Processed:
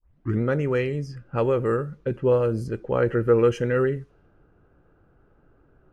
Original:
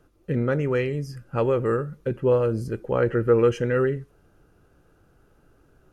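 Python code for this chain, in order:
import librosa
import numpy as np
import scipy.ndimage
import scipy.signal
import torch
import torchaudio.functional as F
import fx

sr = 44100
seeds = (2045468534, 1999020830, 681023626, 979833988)

y = fx.tape_start_head(x, sr, length_s=0.41)
y = fx.env_lowpass(y, sr, base_hz=1800.0, full_db=-20.5)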